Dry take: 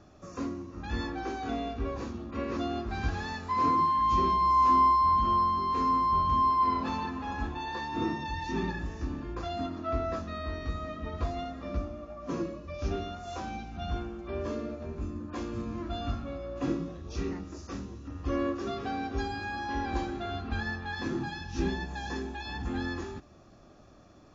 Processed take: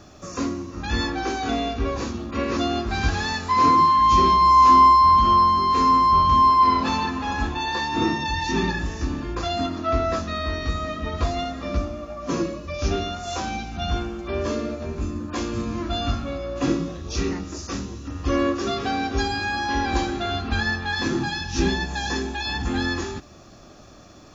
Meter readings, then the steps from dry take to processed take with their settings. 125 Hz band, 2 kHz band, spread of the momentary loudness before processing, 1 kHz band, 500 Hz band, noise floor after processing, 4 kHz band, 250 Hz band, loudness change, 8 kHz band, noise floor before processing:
+8.0 dB, +11.0 dB, 13 LU, +9.5 dB, +8.5 dB, −46 dBFS, +14.5 dB, +8.0 dB, +9.5 dB, can't be measured, −55 dBFS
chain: high-shelf EQ 2,600 Hz +9.5 dB
level +8 dB

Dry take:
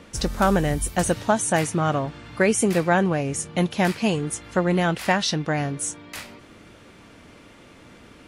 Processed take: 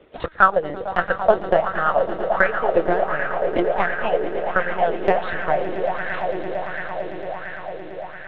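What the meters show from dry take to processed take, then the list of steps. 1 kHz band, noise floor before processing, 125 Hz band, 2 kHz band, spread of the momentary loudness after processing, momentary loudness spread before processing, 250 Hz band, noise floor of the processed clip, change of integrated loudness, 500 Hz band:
+5.5 dB, −49 dBFS, −11.5 dB, +5.0 dB, 13 LU, 9 LU, −7.0 dB, −36 dBFS, +1.0 dB, +5.0 dB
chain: low shelf with overshoot 340 Hz −8.5 dB, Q 1.5
linear-prediction vocoder at 8 kHz pitch kept
in parallel at −10 dB: soft clipping −16.5 dBFS, distortion −10 dB
on the sum: transient designer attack +8 dB, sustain −10 dB
on a send: echo that builds up and dies away 113 ms, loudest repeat 8, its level −13.5 dB
on the sum: auto-filter bell 1.4 Hz 320–1,700 Hz +16 dB
level −10 dB

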